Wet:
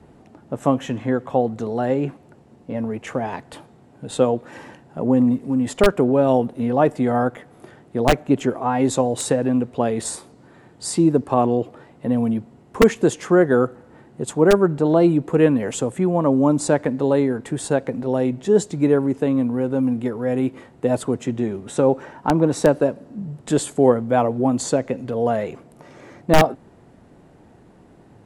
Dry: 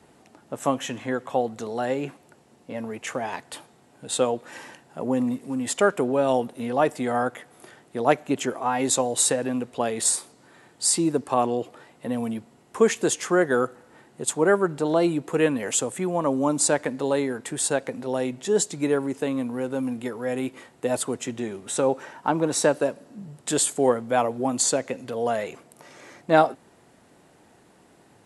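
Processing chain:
wrap-around overflow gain 8 dB
spectral tilt −3 dB per octave
level +2 dB

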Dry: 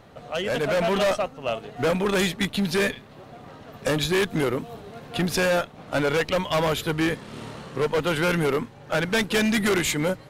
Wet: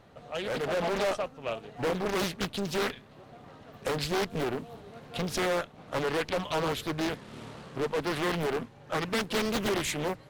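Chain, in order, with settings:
highs frequency-modulated by the lows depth 0.94 ms
level −6.5 dB

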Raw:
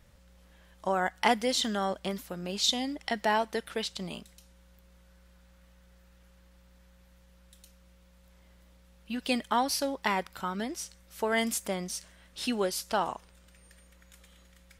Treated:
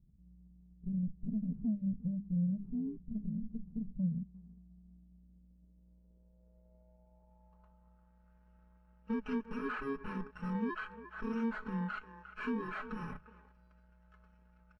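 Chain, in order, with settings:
samples in bit-reversed order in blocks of 64 samples
high-shelf EQ 3,600 Hz +9 dB
tube saturation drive 29 dB, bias 0.45
comb filter 4.7 ms, depth 59%
far-end echo of a speakerphone 350 ms, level −13 dB
low-pass filter sweep 160 Hz → 1,500 Hz, 0:04.42–0:08.32
low-shelf EQ 140 Hz −3.5 dB
downward compressor 12 to 1, threshold −39 dBFS, peak gain reduction 7.5 dB
leveller curve on the samples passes 2
mains-hum notches 50/100/150/200 Hz
every bin expanded away from the loudest bin 1.5 to 1
level +3 dB

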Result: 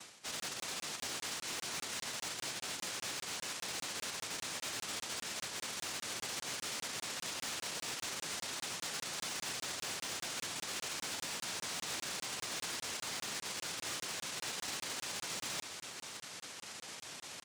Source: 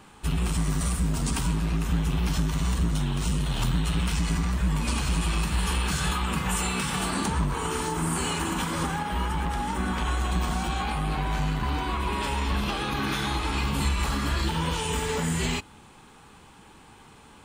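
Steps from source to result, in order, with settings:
spectral envelope flattened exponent 0.1
reversed playback
downward compressor 12 to 1, threshold −39 dBFS, peak gain reduction 20 dB
reversed playback
cochlear-implant simulation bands 1
in parallel at −9.5 dB: wrap-around overflow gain 39.5 dB
on the sum: single-tap delay 560 ms −12 dB
regular buffer underruns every 0.20 s, samples 1,024, zero, from 0:00.40
level +3 dB

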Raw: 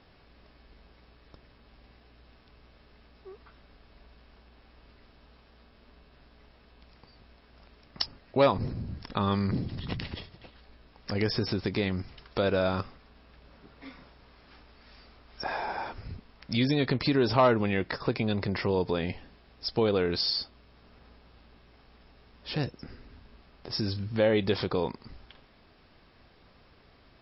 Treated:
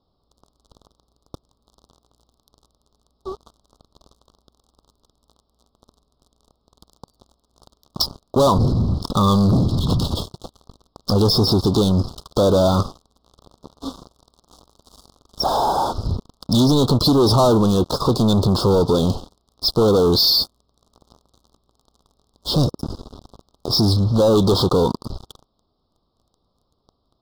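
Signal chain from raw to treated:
leveller curve on the samples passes 5
Chebyshev band-stop filter 1,200–3,600 Hz, order 3

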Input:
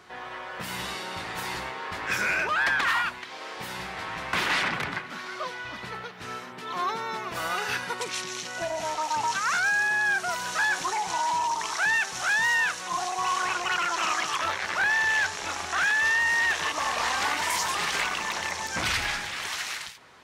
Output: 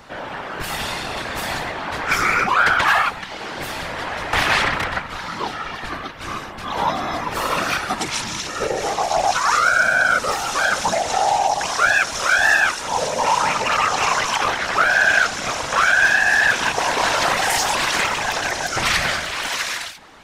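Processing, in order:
frequency shifter −170 Hz
random phases in short frames
level +8 dB

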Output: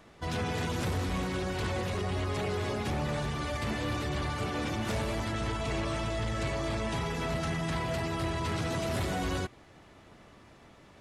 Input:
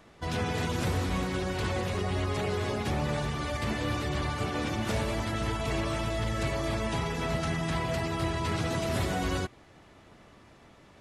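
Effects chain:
0:05.28–0:06.92: low-pass filter 10,000 Hz 24 dB per octave
soft clipping −25 dBFS, distortion −18 dB

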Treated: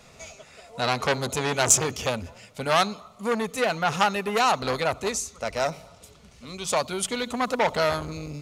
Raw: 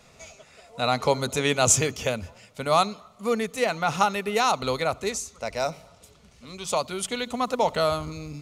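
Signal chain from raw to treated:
saturating transformer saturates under 3,800 Hz
level +3 dB

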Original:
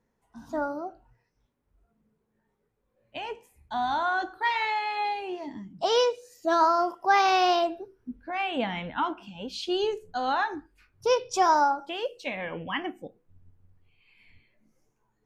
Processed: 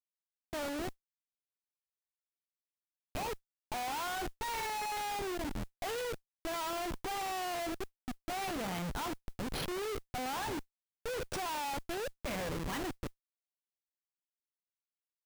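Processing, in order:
bad sample-rate conversion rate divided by 3×, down filtered, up hold
comparator with hysteresis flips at −35.5 dBFS
noise that follows the level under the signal 30 dB
level −7.5 dB

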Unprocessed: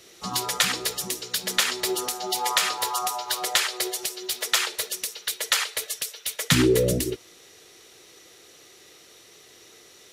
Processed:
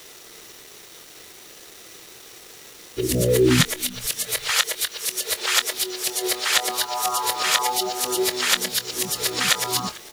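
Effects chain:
played backwards from end to start
in parallel at 0 dB: downward compressor, threshold −30 dBFS, peak gain reduction 15 dB
on the sum: bit reduction 7 bits
double-tracking delay 24 ms −13 dB
echo with shifted repeats 446 ms, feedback 31%, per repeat −130 Hz, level −22 dB

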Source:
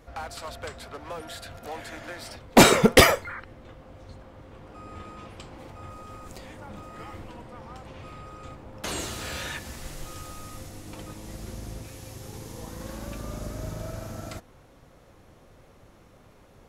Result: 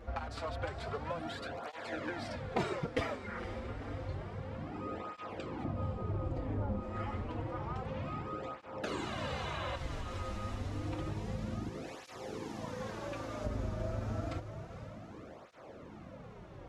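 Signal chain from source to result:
0:05.64–0:06.80: tilt shelving filter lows +9.5 dB, about 1,300 Hz
0:08.93–0:09.74: healed spectral selection 480–4,000 Hz before
0:11.69–0:13.43: high-pass filter 230 Hz → 710 Hz 6 dB per octave
downward compressor 5 to 1, threshold −38 dBFS, peak gain reduction 24 dB
head-to-tape spacing loss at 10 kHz 21 dB
feedback delay with all-pass diffusion 489 ms, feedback 62%, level −11 dB
through-zero flanger with one copy inverted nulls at 0.29 Hz, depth 7.2 ms
level +7.5 dB

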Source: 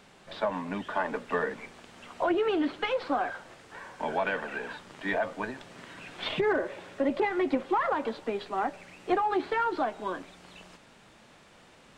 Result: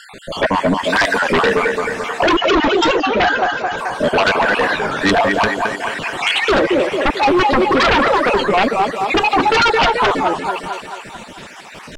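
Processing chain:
time-frequency cells dropped at random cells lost 54%
0:00.84–0:01.33: spectral tilt +2.5 dB per octave
feedback echo with a high-pass in the loop 218 ms, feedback 59%, high-pass 260 Hz, level −6 dB
sine wavefolder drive 13 dB, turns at −15.5 dBFS
0:02.36–0:03.78: linear-phase brick-wall low-pass 7,300 Hz
wow of a warped record 33 1/3 rpm, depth 160 cents
level +6 dB

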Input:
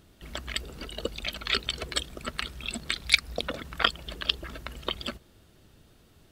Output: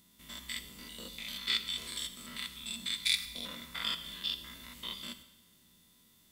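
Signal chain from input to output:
spectrum averaged block by block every 100 ms
first-order pre-emphasis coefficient 0.9
hollow resonant body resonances 220/1,000/2,000/3,500 Hz, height 14 dB, ringing for 40 ms
on a send: convolution reverb RT60 1.0 s, pre-delay 3 ms, DRR 9 dB
on the sum: level +3 dB

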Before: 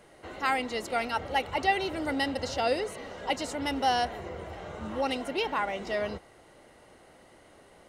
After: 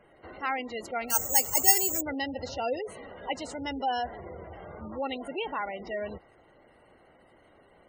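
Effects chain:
0:01.10–0:02.01: bad sample-rate conversion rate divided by 6×, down filtered, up zero stuff
gate on every frequency bin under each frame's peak −20 dB strong
level −3 dB

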